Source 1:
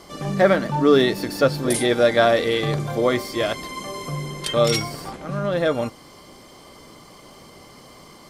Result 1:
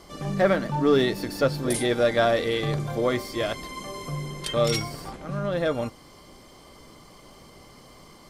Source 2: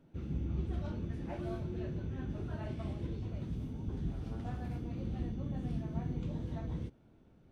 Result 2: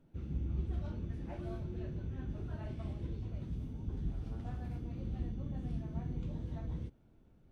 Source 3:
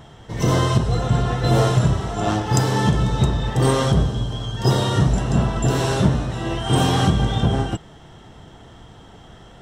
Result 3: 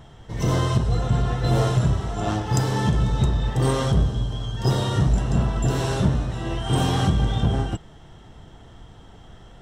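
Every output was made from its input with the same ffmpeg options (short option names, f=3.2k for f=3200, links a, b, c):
-filter_complex "[0:a]lowshelf=f=65:g=10.5,asplit=2[a][b];[b]aeval=exprs='clip(val(0),-1,0.224)':c=same,volume=-5dB[c];[a][c]amix=inputs=2:normalize=0,volume=-8.5dB"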